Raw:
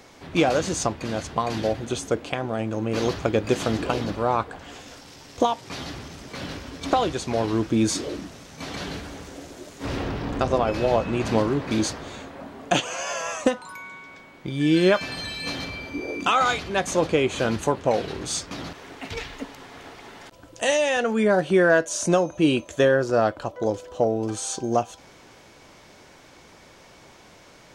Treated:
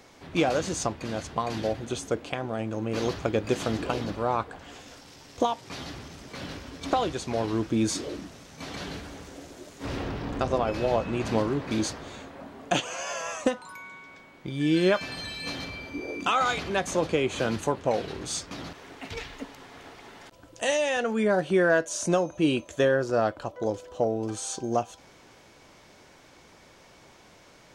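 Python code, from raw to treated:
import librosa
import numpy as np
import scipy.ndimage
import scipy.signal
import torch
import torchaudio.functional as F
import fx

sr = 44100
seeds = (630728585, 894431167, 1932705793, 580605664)

y = fx.band_squash(x, sr, depth_pct=40, at=(16.57, 17.61))
y = y * librosa.db_to_amplitude(-4.0)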